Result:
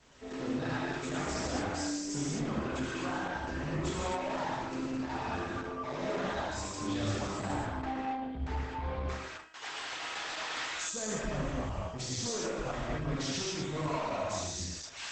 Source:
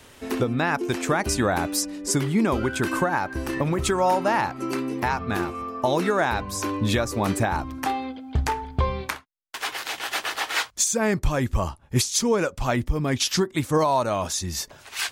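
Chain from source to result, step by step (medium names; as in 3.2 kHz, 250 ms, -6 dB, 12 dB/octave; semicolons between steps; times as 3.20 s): 7.40–9.07 s: low-pass 3.2 kHz 12 dB/octave; feedback comb 320 Hz, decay 0.84 s, mix 80%; saturation -37 dBFS, distortion -9 dB; gated-style reverb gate 290 ms flat, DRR -7 dB; Opus 12 kbps 48 kHz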